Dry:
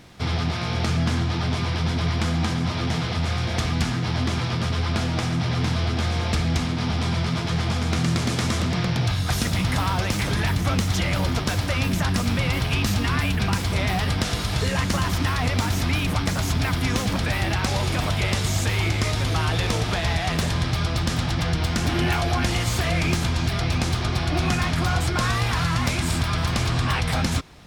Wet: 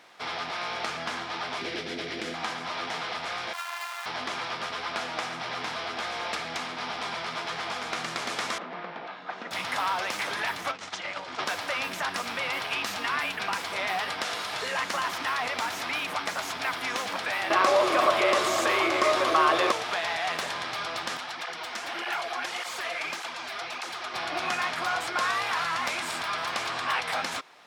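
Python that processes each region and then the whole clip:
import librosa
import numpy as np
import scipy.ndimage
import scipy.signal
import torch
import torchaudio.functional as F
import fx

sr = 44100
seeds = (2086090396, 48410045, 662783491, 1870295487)

y = fx.chain(x, sr, fx.curve_eq(hz=(150.0, 380.0, 1000.0, 1900.0), db=(0, 9, -16, -3)),
    fx.env_flatten(amount_pct=100), at=(1.61, 2.34))
y = fx.chain(y, sr, fx.sample_sort(block=128),
    fx.highpass(hz=860.0, slope=24),
    fx.ensemble(), at=(3.53, 4.06))
y = fx.chain(y, sr, fx.brickwall_highpass(low_hz=150.0),
    fx.spacing_loss(db_at_10k=40), at=(8.58, 9.51))
y = fx.chain(y, sr, fx.lowpass(hz=8000.0, slope=24),
    fx.over_compress(threshold_db=-26.0, ratio=-0.5), at=(10.71, 11.45))
y = fx.chain(y, sr, fx.small_body(hz=(360.0, 570.0, 1100.0), ring_ms=35, db=15),
    fx.env_flatten(amount_pct=50), at=(17.5, 19.72))
y = fx.chain(y, sr, fx.low_shelf(hz=200.0, db=-11.0),
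    fx.flanger_cancel(hz=1.7, depth_ms=7.2), at=(21.17, 24.14))
y = scipy.signal.sosfilt(scipy.signal.butter(2, 720.0, 'highpass', fs=sr, output='sos'), y)
y = fx.high_shelf(y, sr, hz=3400.0, db=-10.0)
y = y * librosa.db_to_amplitude(1.5)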